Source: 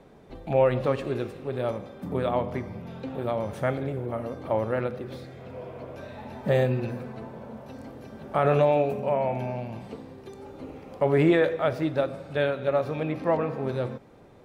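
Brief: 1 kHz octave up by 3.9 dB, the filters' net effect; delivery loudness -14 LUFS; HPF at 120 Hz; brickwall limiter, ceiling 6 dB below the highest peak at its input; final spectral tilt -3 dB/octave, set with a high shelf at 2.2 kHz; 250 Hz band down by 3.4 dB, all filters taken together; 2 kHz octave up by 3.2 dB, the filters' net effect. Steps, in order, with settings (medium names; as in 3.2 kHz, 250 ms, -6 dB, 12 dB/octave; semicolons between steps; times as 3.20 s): high-pass 120 Hz; peaking EQ 250 Hz -5 dB; peaking EQ 1 kHz +5.5 dB; peaking EQ 2 kHz +4 dB; treble shelf 2.2 kHz -3.5 dB; trim +14 dB; peak limiter 0 dBFS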